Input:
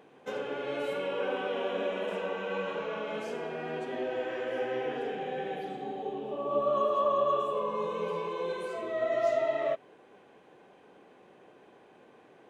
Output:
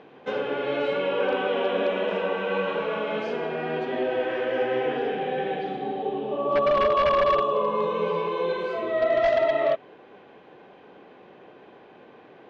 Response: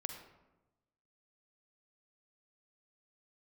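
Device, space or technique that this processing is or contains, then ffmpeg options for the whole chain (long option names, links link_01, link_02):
synthesiser wavefolder: -af "aeval=exprs='0.075*(abs(mod(val(0)/0.075+3,4)-2)-1)':channel_layout=same,lowpass=frequency=4600:width=0.5412,lowpass=frequency=4600:width=1.3066,volume=7.5dB"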